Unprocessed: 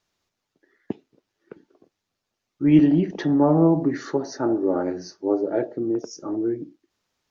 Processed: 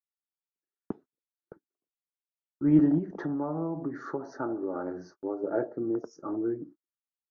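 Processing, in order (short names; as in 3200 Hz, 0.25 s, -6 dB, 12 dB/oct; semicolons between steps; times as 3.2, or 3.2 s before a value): gate -42 dBFS, range -33 dB; resonant high shelf 1900 Hz -11.5 dB, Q 3; 2.98–5.44 compressor 6:1, threshold -23 dBFS, peak gain reduction 11 dB; gain -6 dB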